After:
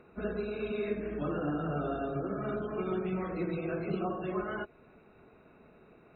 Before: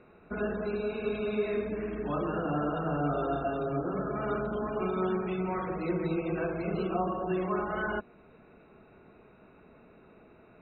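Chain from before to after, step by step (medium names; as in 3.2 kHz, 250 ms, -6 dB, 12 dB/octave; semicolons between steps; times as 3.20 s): dynamic bell 930 Hz, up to -7 dB, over -50 dBFS, Q 2.2; plain phase-vocoder stretch 0.58×; trim +1.5 dB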